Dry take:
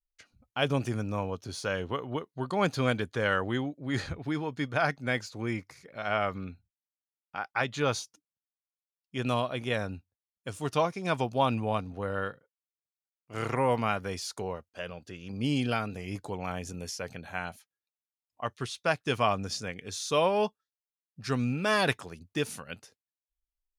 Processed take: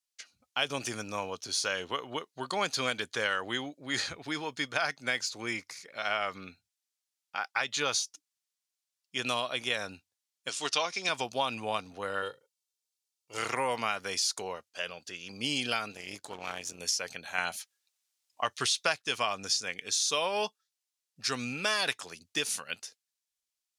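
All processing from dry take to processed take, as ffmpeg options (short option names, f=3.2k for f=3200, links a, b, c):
-filter_complex "[0:a]asettb=1/sr,asplit=3[a][b][c];[a]atrim=end=10.494[d];[b]atrim=start=10.49:end=11.09,asetpts=PTS-STARTPTS,afade=t=in:d=0.004:c=qsin,afade=t=out:st=0.596:d=0.004:c=qsin,highpass=190,lowpass=4.7k,highshelf=f=2.6k:g=11[e];[c]atrim=start=11.086[f];[d][e]acrossfade=d=0.004:c1=hsin:c2=qsin[g];[g][f]acrossfade=d=0.004:c1=qsin:c2=hsin,asettb=1/sr,asplit=3[h][i][j];[h]atrim=end=12.224[k];[i]atrim=start=12.22:end=13.38,asetpts=PTS-STARTPTS,afade=t=in:d=0.004:c=qsin,afade=t=out:st=1.156:d=0.004:c=qsin,equalizer=f=1.6k:t=o:w=0.94:g=-11,aecho=1:1:2.2:0.56,atrim=end_sample=51156[l];[j]atrim=start=13.376[m];[k][l]acrossfade=d=0.004:c1=hsin:c2=qsin[n];[n][m]acrossfade=d=0.004:c1=qsin:c2=hsin,asettb=1/sr,asplit=3[o][p][q];[o]atrim=end=15.924[r];[p]atrim=start=15.92:end=16.8,asetpts=PTS-STARTPTS,afade=t=in:d=0.004:c=qsin,afade=t=out:st=0.876:d=0.004:c=qsin,aeval=exprs='if(lt(val(0),0),0.447*val(0),val(0))':c=same,tremolo=f=240:d=0.519[s];[q]atrim=start=16.796[t];[r][s]acrossfade=d=0.004:c1=hsin:c2=qsin[u];[u][t]acrossfade=d=0.004:c1=qsin:c2=hsin,asettb=1/sr,asplit=3[v][w][x];[v]atrim=end=17.384[y];[w]atrim=start=17.38:end=19.02,asetpts=PTS-STARTPTS,afade=t=in:d=0.004:c=qsin,afade=t=out:st=1.636:d=0.004:c=qsin,asubboost=boost=3.5:cutoff=110,acontrast=71[z];[x]atrim=start=19.016[aa];[y][z]acrossfade=d=0.004:c1=hsin:c2=qsin[ab];[ab][aa]acrossfade=d=0.004:c1=qsin:c2=hsin,highpass=f=530:p=1,equalizer=f=6k:t=o:w=2.6:g=12,acompressor=threshold=-26dB:ratio=4"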